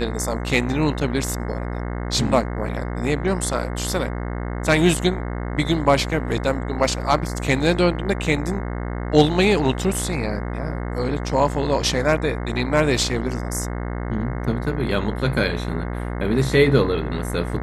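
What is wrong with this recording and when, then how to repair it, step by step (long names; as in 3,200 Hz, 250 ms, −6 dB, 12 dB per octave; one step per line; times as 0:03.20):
mains buzz 60 Hz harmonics 36 −27 dBFS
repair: hum removal 60 Hz, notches 36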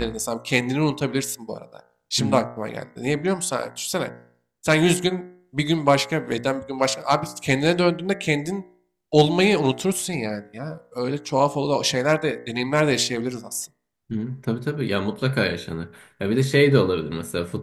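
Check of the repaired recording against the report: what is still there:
none of them is left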